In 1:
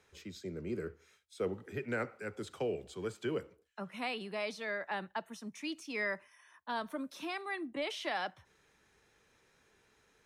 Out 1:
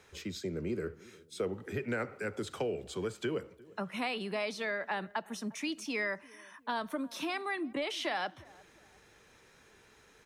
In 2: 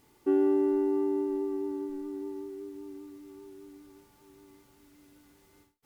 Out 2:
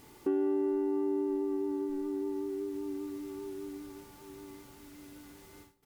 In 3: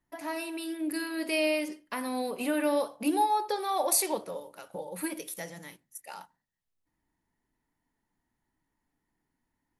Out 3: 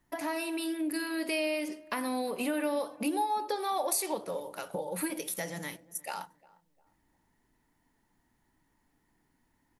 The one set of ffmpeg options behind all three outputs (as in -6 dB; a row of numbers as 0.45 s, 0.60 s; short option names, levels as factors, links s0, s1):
-filter_complex "[0:a]acompressor=threshold=0.00794:ratio=2.5,asplit=2[s0][s1];[s1]adelay=353,lowpass=f=970:p=1,volume=0.0891,asplit=2[s2][s3];[s3]adelay=353,lowpass=f=970:p=1,volume=0.43,asplit=2[s4][s5];[s5]adelay=353,lowpass=f=970:p=1,volume=0.43[s6];[s2][s4][s6]amix=inputs=3:normalize=0[s7];[s0][s7]amix=inputs=2:normalize=0,volume=2.51"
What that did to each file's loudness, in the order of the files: +2.5 LU, -4.0 LU, -3.0 LU